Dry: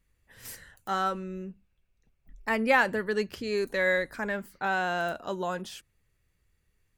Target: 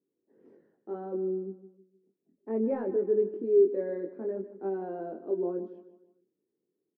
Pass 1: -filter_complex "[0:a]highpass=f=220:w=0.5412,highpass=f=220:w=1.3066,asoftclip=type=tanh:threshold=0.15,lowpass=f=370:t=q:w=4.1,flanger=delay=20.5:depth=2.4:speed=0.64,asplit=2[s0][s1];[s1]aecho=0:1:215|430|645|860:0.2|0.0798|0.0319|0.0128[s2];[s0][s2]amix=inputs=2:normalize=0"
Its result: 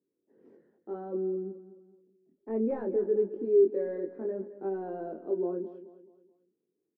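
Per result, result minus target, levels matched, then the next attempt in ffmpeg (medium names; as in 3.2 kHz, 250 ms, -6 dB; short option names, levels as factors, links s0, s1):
saturation: distortion +16 dB; echo 61 ms late
-filter_complex "[0:a]highpass=f=220:w=0.5412,highpass=f=220:w=1.3066,asoftclip=type=tanh:threshold=0.501,lowpass=f=370:t=q:w=4.1,flanger=delay=20.5:depth=2.4:speed=0.64,asplit=2[s0][s1];[s1]aecho=0:1:215|430|645|860:0.2|0.0798|0.0319|0.0128[s2];[s0][s2]amix=inputs=2:normalize=0"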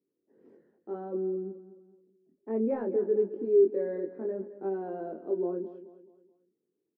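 echo 61 ms late
-filter_complex "[0:a]highpass=f=220:w=0.5412,highpass=f=220:w=1.3066,asoftclip=type=tanh:threshold=0.501,lowpass=f=370:t=q:w=4.1,flanger=delay=20.5:depth=2.4:speed=0.64,asplit=2[s0][s1];[s1]aecho=0:1:154|308|462|616:0.2|0.0798|0.0319|0.0128[s2];[s0][s2]amix=inputs=2:normalize=0"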